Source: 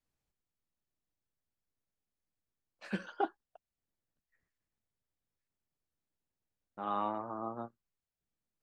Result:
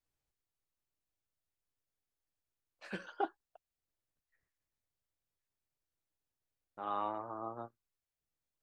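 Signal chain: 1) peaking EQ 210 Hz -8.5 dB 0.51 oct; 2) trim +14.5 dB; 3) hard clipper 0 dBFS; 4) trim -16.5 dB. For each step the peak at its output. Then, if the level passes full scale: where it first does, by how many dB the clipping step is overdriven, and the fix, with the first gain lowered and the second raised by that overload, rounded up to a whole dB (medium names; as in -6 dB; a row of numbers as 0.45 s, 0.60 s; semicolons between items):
-19.0 dBFS, -4.5 dBFS, -4.5 dBFS, -21.0 dBFS; nothing clips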